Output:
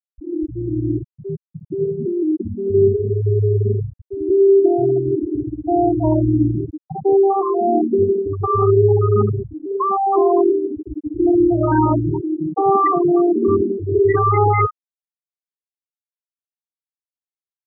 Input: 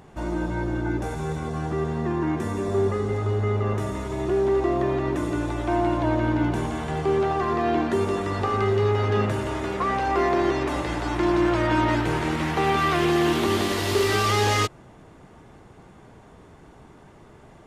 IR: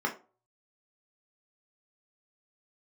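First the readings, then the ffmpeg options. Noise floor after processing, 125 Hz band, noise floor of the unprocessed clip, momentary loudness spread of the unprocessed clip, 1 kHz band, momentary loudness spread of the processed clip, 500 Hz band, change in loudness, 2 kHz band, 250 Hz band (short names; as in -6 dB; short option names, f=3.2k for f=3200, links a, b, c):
under -85 dBFS, +6.0 dB, -50 dBFS, 7 LU, +5.0 dB, 11 LU, +8.0 dB, +6.5 dB, -7.5 dB, +6.5 dB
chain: -filter_complex "[0:a]asplit=2[a][b];[1:a]atrim=start_sample=2205,afade=t=out:st=0.33:d=0.01,atrim=end_sample=14994,adelay=60[c];[b][c]afir=irnorm=-1:irlink=0,volume=-18.5dB[d];[a][d]amix=inputs=2:normalize=0,afftfilt=real='re*gte(hypot(re,im),0.316)':imag='im*gte(hypot(re,im),0.316)':win_size=1024:overlap=0.75,lowpass=3.1k,volume=7.5dB"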